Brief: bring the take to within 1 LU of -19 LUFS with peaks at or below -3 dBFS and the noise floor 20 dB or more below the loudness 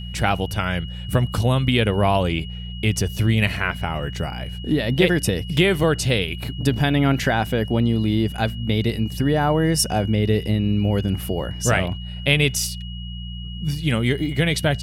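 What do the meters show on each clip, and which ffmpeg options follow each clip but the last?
hum 60 Hz; harmonics up to 180 Hz; hum level -29 dBFS; steady tone 2900 Hz; tone level -38 dBFS; loudness -21.0 LUFS; peak -2.0 dBFS; loudness target -19.0 LUFS
-> -af "bandreject=f=60:t=h:w=4,bandreject=f=120:t=h:w=4,bandreject=f=180:t=h:w=4"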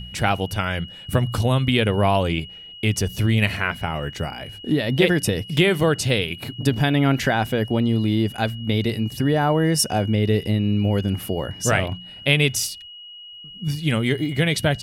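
hum none; steady tone 2900 Hz; tone level -38 dBFS
-> -af "bandreject=f=2.9k:w=30"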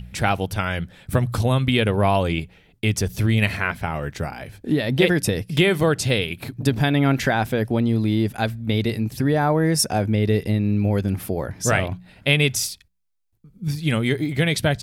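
steady tone none; loudness -21.5 LUFS; peak -2.5 dBFS; loudness target -19.0 LUFS
-> -af "volume=2.5dB,alimiter=limit=-3dB:level=0:latency=1"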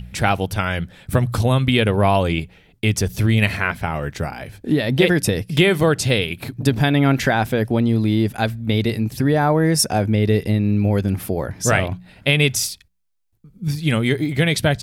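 loudness -19.5 LUFS; peak -3.0 dBFS; noise floor -56 dBFS

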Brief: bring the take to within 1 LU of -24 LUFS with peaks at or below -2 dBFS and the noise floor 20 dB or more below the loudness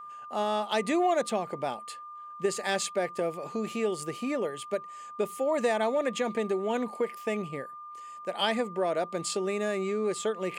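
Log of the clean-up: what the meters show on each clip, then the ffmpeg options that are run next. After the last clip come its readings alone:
steady tone 1200 Hz; tone level -41 dBFS; loudness -30.5 LUFS; peak -14.0 dBFS; loudness target -24.0 LUFS
-> -af "bandreject=f=1.2k:w=30"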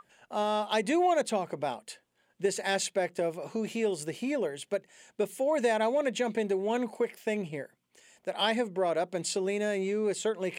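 steady tone none; loudness -30.5 LUFS; peak -14.5 dBFS; loudness target -24.0 LUFS
-> -af "volume=6.5dB"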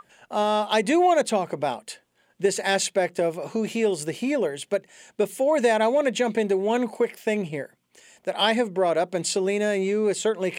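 loudness -24.0 LUFS; peak -8.0 dBFS; noise floor -67 dBFS

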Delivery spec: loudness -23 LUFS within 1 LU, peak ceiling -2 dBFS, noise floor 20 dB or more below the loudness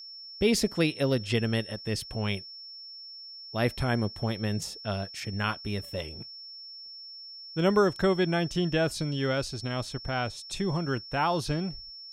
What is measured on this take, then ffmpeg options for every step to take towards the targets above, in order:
steady tone 5400 Hz; tone level -42 dBFS; loudness -29.0 LUFS; peak -11.5 dBFS; loudness target -23.0 LUFS
-> -af "bandreject=f=5.4k:w=30"
-af "volume=6dB"

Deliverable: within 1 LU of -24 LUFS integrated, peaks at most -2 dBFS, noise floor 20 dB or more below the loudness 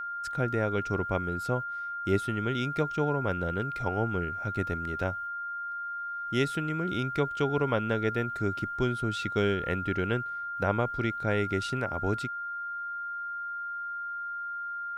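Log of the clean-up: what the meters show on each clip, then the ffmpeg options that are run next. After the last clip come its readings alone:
steady tone 1400 Hz; tone level -33 dBFS; loudness -30.5 LUFS; peak -12.5 dBFS; loudness target -24.0 LUFS
-> -af "bandreject=f=1.4k:w=30"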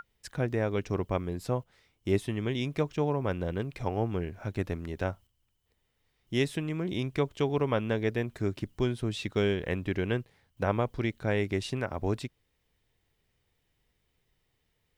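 steady tone none; loudness -31.5 LUFS; peak -13.0 dBFS; loudness target -24.0 LUFS
-> -af "volume=7.5dB"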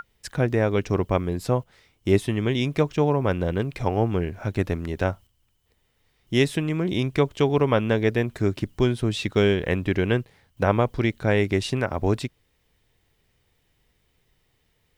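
loudness -24.0 LUFS; peak -5.5 dBFS; noise floor -69 dBFS

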